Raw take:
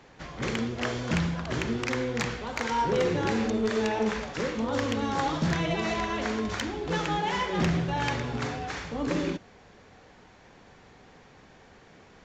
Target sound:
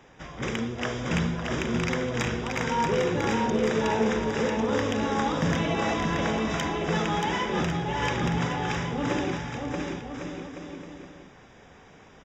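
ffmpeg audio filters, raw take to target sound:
-filter_complex "[0:a]asuperstop=centerf=4300:order=20:qfactor=6.3,asplit=2[s0][s1];[s1]aecho=0:1:630|1102|1457|1723|1922:0.631|0.398|0.251|0.158|0.1[s2];[s0][s2]amix=inputs=2:normalize=0,asettb=1/sr,asplit=3[s3][s4][s5];[s3]atrim=end=7.604[s6];[s4]atrim=start=7.6:end=8.03,asetpts=PTS-STARTPTS,afade=t=in:d=0.004:c=qsin,afade=t=out:st=0.426:d=0.004:c=qsin,acompressor=threshold=0.0631:ratio=6[s7];[s5]atrim=start=8.026[s8];[s6][s7]acrossfade=d=0.004:c1=hsin:c2=qsin[s9];[s9][s8]acrossfade=d=0.004:c1=qsin:c2=hsin"

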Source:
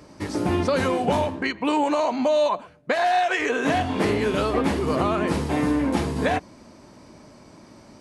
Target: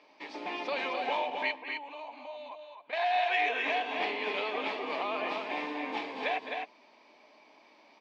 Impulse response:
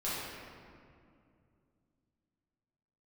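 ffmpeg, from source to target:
-filter_complex "[0:a]asettb=1/sr,asplit=3[s0][s1][s2];[s0]atrim=end=1.514[s3];[s1]atrim=start=1.51:end=2.93,asetpts=PTS-STARTPTS,afade=t=in:d=0.004:c=qsin,afade=t=out:st=1.416:d=0.004:c=qsin,acompressor=threshold=0.0126:ratio=3[s4];[s2]atrim=start=2.926[s5];[s3][s4]acrossfade=d=0.004:c1=hsin:c2=qsin[s6];[s6][s5]acrossfade=d=0.004:c1=qsin:c2=hsin,highpass=f=360:w=0.5412,highpass=f=360:w=1.3066,equalizer=f=360:t=q:w=4:g=-9,equalizer=f=520:t=q:w=4:g=-6,equalizer=f=850:t=q:w=4:g=3,equalizer=f=1400:t=q:w=4:g=-9,equalizer=f=2400:t=q:w=4:g=9,equalizer=f=3400:t=q:w=4:g=4,lowpass=f=4400:w=0.5412,lowpass=f=4400:w=1.3066,aecho=1:1:209.9|259.5:0.251|0.562,volume=0.398"

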